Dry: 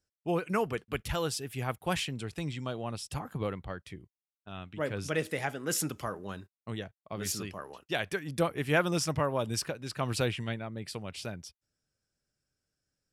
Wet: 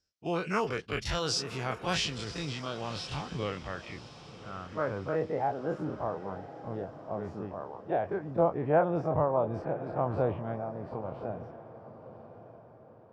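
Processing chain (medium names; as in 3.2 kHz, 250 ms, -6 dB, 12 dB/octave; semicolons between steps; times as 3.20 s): every event in the spectrogram widened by 60 ms; low-pass sweep 5.4 kHz -> 790 Hz, 2.61–5.36 s; echo that smears into a reverb 1067 ms, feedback 41%, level -13.5 dB; trim -4 dB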